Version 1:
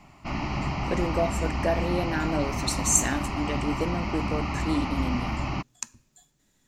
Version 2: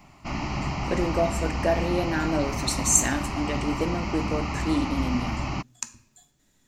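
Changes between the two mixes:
speech: send +10.0 dB; background: remove LPF 5000 Hz 12 dB/oct

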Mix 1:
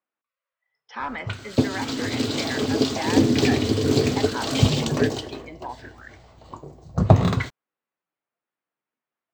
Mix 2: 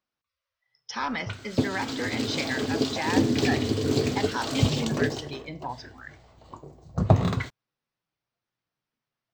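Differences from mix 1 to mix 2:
speech: remove three-band isolator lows -23 dB, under 210 Hz, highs -22 dB, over 3000 Hz; background -4.5 dB

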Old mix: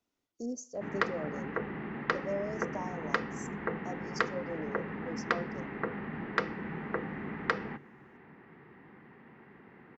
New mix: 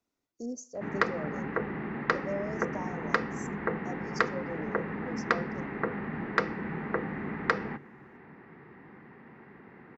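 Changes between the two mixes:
background +3.5 dB; master: add bell 3100 Hz -5 dB 0.43 oct

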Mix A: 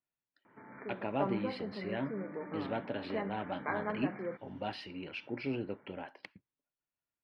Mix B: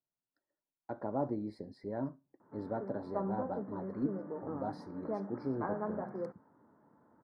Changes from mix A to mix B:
background: entry +1.95 s; master: add Butterworth band-stop 2800 Hz, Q 0.51

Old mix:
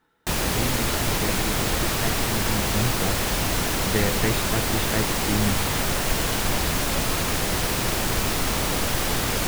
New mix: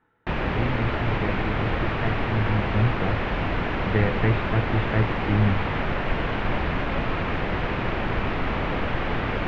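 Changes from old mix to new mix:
speech: add bell 110 Hz +9.5 dB 0.23 oct; master: add LPF 2600 Hz 24 dB/oct

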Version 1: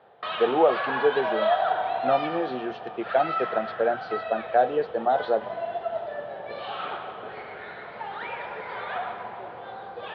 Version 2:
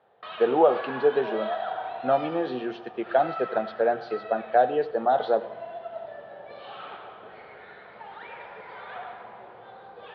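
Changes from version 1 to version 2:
background -10.0 dB; reverb: on, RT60 0.55 s

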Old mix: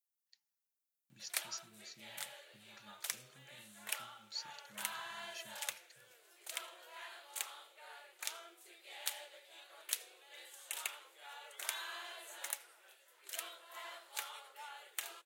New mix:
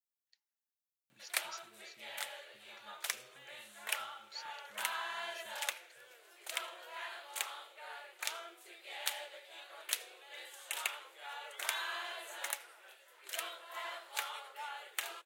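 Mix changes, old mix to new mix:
background +6.5 dB; master: add tone controls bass -11 dB, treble -6 dB

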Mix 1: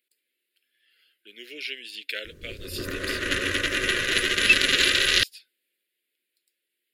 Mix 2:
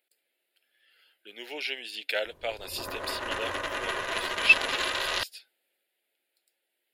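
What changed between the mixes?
background -11.0 dB; master: remove Butterworth band-stop 840 Hz, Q 0.68

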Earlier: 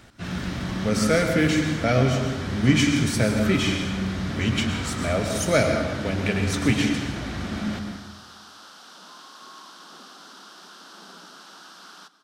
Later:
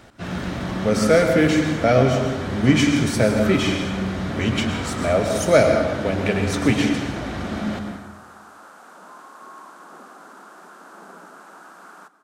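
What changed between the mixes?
background: add band shelf 4100 Hz -14.5 dB 1.2 oct; master: add bell 600 Hz +7 dB 2.1 oct

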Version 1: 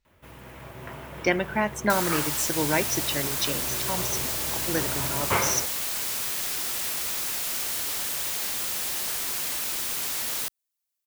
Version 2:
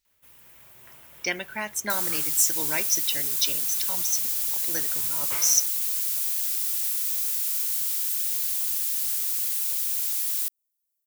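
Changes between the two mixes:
speech +8.5 dB; master: add pre-emphasis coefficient 0.9

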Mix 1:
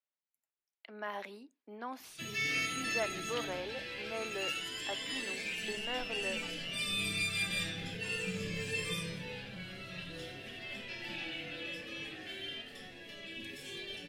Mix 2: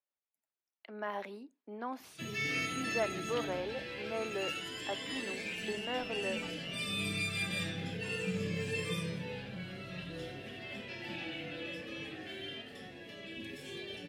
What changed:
background: add HPF 56 Hz; master: add tilt shelf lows +4 dB, about 1500 Hz

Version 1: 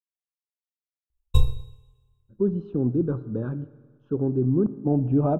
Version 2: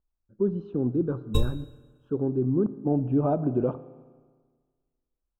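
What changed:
speech: entry -2.00 s; master: add low shelf 190 Hz -6.5 dB

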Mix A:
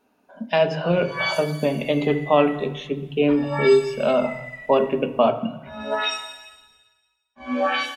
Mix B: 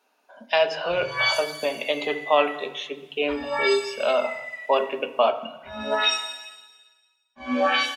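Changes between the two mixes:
speech: add HPF 570 Hz 12 dB/oct; second sound: add HPF 510 Hz 12 dB/oct; master: add bell 4800 Hz +5 dB 1.9 oct

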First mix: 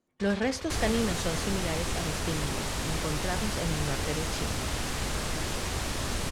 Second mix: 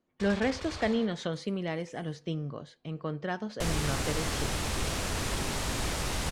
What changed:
speech: add LPF 4400 Hz 12 dB/oct; second sound: entry +2.90 s

